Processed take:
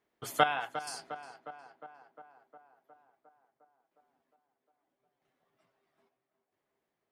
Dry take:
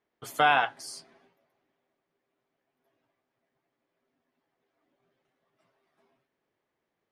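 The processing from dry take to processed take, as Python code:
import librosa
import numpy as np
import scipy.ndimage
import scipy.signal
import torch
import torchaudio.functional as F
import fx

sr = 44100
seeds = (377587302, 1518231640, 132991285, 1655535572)

p1 = fx.rider(x, sr, range_db=5, speed_s=2.0)
p2 = fx.tremolo_random(p1, sr, seeds[0], hz=2.3, depth_pct=75)
y = p2 + fx.echo_tape(p2, sr, ms=357, feedback_pct=72, wet_db=-10.5, lp_hz=2300.0, drive_db=13.0, wow_cents=27, dry=0)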